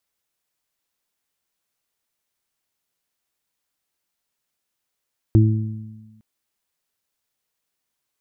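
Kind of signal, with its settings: additive tone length 0.86 s, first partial 109 Hz, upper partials -10/-6.5 dB, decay 1.17 s, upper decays 1.56/0.74 s, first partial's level -9 dB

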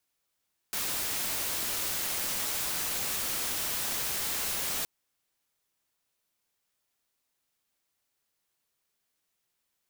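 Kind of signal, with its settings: noise white, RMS -32 dBFS 4.12 s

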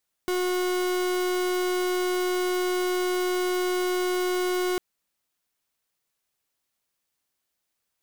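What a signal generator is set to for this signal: pulse 363 Hz, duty 42% -25.5 dBFS 4.50 s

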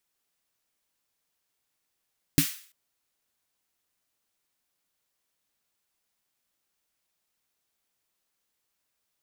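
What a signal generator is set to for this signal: snare drum length 0.34 s, tones 160 Hz, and 280 Hz, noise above 1.5 kHz, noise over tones -6.5 dB, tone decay 0.11 s, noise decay 0.46 s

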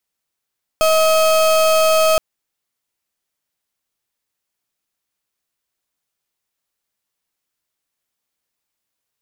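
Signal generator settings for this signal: pulse 636 Hz, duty 34% -13.5 dBFS 1.37 s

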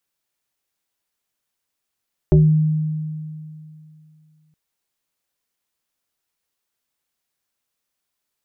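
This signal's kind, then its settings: FM tone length 2.22 s, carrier 155 Hz, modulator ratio 1.43, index 1.3, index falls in 0.33 s exponential, decay 2.66 s, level -7.5 dB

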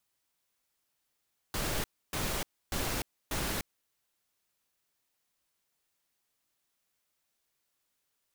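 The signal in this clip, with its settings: noise bursts pink, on 0.30 s, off 0.29 s, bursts 4, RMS -33 dBFS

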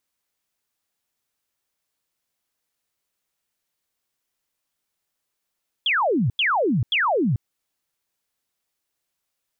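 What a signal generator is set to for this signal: burst of laser zaps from 3.5 kHz, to 100 Hz, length 0.44 s sine, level -17.5 dB, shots 3, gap 0.09 s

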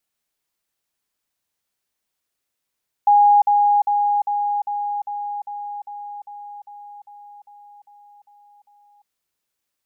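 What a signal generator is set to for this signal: level ladder 822 Hz -9.5 dBFS, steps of -3 dB, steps 15, 0.35 s 0.05 s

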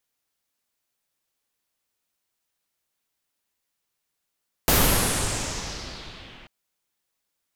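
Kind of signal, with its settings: swept filtered noise pink, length 1.79 s lowpass, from 15 kHz, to 2.8 kHz, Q 2.7, exponential, gain ramp -30.5 dB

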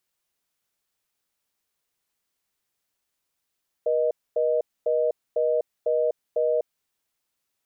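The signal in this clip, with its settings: call progress tone reorder tone, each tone -22.5 dBFS 2.83 s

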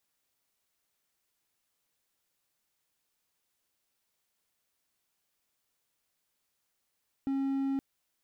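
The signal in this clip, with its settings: tone triangle 272 Hz -26 dBFS 0.52 s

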